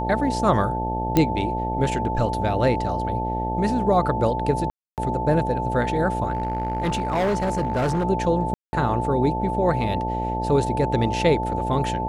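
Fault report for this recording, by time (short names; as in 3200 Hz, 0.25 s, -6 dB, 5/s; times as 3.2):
buzz 60 Hz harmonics 14 -28 dBFS
tone 880 Hz -26 dBFS
1.17 pop -5 dBFS
4.7–4.98 gap 0.278 s
6.33–8.05 clipped -18.5 dBFS
8.54–8.73 gap 0.19 s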